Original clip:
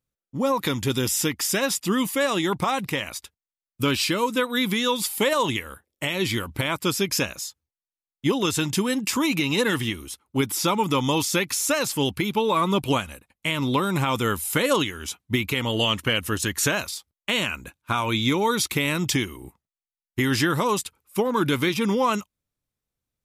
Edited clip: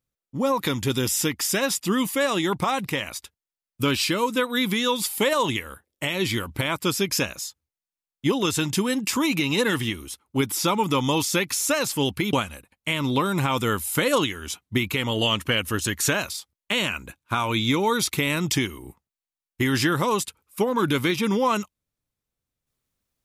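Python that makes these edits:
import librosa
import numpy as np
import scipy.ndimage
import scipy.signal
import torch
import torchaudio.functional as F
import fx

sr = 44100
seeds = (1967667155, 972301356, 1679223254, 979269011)

y = fx.edit(x, sr, fx.cut(start_s=12.33, length_s=0.58), tone=tone)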